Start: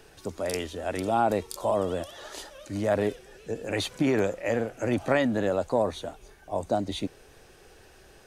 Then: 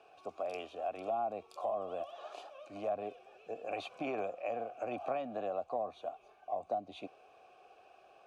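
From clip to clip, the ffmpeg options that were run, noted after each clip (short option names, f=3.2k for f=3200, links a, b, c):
-filter_complex "[0:a]asplit=3[a][b][c];[a]bandpass=f=730:t=q:w=8,volume=0dB[d];[b]bandpass=f=1.09k:t=q:w=8,volume=-6dB[e];[c]bandpass=f=2.44k:t=q:w=8,volume=-9dB[f];[d][e][f]amix=inputs=3:normalize=0,acrossover=split=270[g][h];[h]acompressor=threshold=-41dB:ratio=4[i];[g][i]amix=inputs=2:normalize=0,volume=6dB"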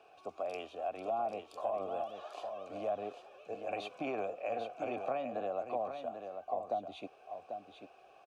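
-af "aecho=1:1:792:0.422"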